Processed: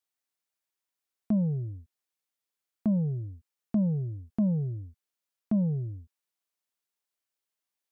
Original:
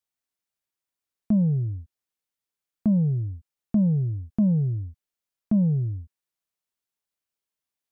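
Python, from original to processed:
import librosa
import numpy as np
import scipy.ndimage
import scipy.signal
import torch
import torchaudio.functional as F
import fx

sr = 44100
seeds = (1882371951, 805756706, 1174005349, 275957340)

y = fx.low_shelf(x, sr, hz=170.0, db=-11.5)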